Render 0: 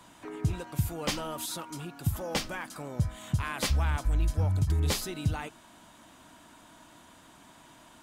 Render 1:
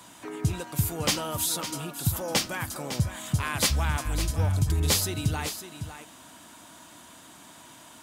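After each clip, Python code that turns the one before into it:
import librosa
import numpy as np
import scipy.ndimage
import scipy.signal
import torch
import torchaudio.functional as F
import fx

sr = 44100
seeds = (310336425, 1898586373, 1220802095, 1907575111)

y = scipy.signal.sosfilt(scipy.signal.butter(2, 70.0, 'highpass', fs=sr, output='sos'), x)
y = fx.high_shelf(y, sr, hz=4100.0, db=8.0)
y = y + 10.0 ** (-10.5 / 20.0) * np.pad(y, (int(555 * sr / 1000.0), 0))[:len(y)]
y = y * librosa.db_to_amplitude(3.0)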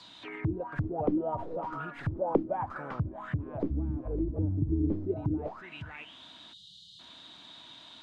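y = fx.tracing_dist(x, sr, depth_ms=0.099)
y = fx.spec_erase(y, sr, start_s=6.53, length_s=0.47, low_hz=210.0, high_hz=2800.0)
y = fx.envelope_lowpass(y, sr, base_hz=310.0, top_hz=4600.0, q=7.9, full_db=-23.0, direction='down')
y = y * librosa.db_to_amplitude(-7.0)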